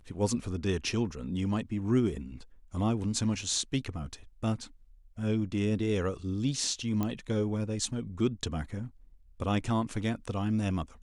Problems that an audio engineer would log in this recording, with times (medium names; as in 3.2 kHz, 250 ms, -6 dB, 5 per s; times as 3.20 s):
7.03 s: pop -18 dBFS